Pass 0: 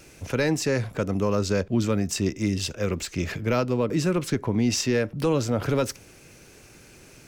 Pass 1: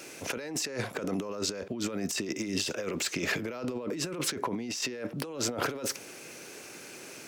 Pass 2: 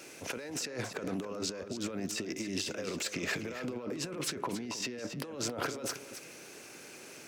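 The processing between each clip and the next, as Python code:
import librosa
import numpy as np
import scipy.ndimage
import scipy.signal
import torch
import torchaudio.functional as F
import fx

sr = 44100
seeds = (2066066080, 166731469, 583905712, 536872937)

y1 = scipy.signal.sosfilt(scipy.signal.butter(2, 280.0, 'highpass', fs=sr, output='sos'), x)
y1 = fx.over_compress(y1, sr, threshold_db=-34.0, ratio=-1.0)
y2 = y1 + 10.0 ** (-10.5 / 20.0) * np.pad(y1, (int(275 * sr / 1000.0), 0))[:len(y1)]
y2 = fx.doppler_dist(y2, sr, depth_ms=0.13)
y2 = F.gain(torch.from_numpy(y2), -4.0).numpy()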